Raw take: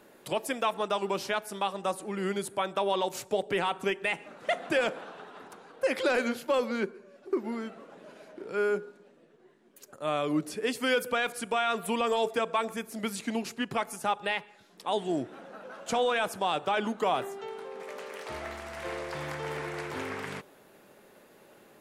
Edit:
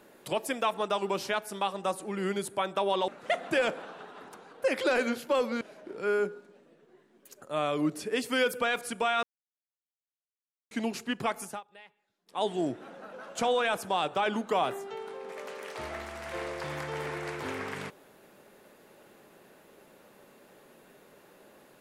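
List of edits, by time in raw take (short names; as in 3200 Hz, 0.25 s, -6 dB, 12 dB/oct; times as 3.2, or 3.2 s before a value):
3.08–4.27 cut
6.8–8.12 cut
11.74–13.22 mute
13.96–14.93 dip -21.5 dB, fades 0.16 s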